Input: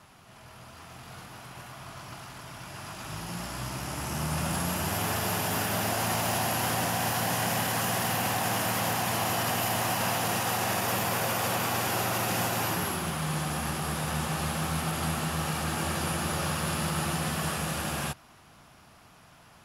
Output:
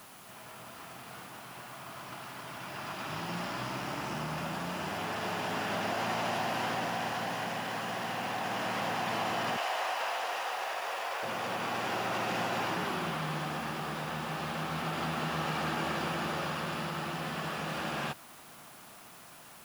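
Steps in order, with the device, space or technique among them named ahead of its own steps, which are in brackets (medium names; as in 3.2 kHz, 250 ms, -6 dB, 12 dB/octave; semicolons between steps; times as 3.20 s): 9.57–11.23 s: high-pass 480 Hz 24 dB/octave; medium wave at night (band-pass 190–3900 Hz; compression, threshold -32 dBFS, peak gain reduction 6 dB; tremolo 0.32 Hz, depth 34%; whistle 10 kHz -66 dBFS; white noise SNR 20 dB); trim +3 dB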